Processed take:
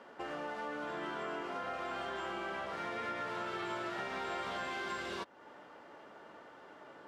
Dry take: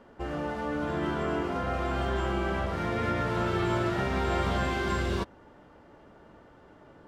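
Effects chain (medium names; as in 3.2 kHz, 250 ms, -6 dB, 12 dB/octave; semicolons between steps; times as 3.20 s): frequency weighting A; compression 2.5:1, threshold -45 dBFS, peak gain reduction 11.5 dB; trim +3 dB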